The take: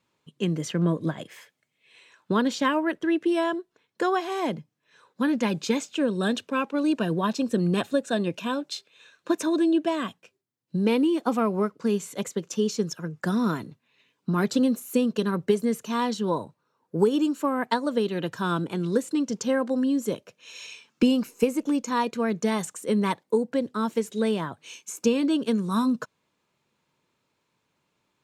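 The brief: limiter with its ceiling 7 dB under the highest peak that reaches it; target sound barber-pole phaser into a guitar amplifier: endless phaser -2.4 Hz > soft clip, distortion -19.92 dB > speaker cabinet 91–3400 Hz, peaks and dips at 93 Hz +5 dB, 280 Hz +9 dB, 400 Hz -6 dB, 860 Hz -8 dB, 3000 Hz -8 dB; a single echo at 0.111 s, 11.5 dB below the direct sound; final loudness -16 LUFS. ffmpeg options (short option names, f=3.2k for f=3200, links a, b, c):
-filter_complex "[0:a]alimiter=limit=-17dB:level=0:latency=1,aecho=1:1:111:0.266,asplit=2[a][b];[b]afreqshift=-2.4[c];[a][c]amix=inputs=2:normalize=1,asoftclip=threshold=-20dB,highpass=91,equalizer=f=93:t=q:w=4:g=5,equalizer=f=280:t=q:w=4:g=9,equalizer=f=400:t=q:w=4:g=-6,equalizer=f=860:t=q:w=4:g=-8,equalizer=f=3k:t=q:w=4:g=-8,lowpass=f=3.4k:w=0.5412,lowpass=f=3.4k:w=1.3066,volume=13dB"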